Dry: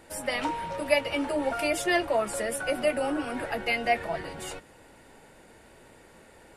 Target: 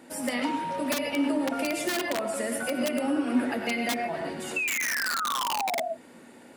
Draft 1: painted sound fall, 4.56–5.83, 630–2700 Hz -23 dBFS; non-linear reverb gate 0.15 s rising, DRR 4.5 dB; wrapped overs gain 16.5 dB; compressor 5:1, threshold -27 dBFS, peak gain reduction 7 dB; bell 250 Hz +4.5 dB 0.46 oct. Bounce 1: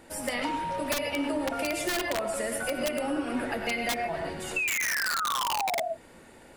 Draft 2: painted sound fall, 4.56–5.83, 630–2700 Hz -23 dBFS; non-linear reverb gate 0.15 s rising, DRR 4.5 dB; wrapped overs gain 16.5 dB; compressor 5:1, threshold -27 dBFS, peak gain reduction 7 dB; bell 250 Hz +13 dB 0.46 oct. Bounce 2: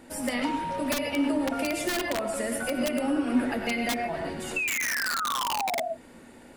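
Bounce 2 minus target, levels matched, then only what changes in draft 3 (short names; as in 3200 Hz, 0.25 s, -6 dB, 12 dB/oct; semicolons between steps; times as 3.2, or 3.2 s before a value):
125 Hz band +3.0 dB
add after compressor: HPF 150 Hz 12 dB/oct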